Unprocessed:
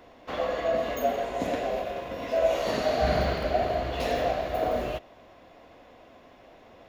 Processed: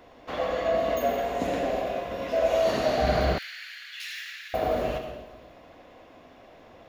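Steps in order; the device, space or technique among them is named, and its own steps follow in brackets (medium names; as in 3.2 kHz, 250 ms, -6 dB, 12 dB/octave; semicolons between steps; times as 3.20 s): bathroom (reverberation RT60 1.2 s, pre-delay 64 ms, DRR 4.5 dB); 3.38–4.54 s: steep high-pass 1.6 kHz 48 dB/octave; feedback echo behind a high-pass 239 ms, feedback 54%, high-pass 3.2 kHz, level -19.5 dB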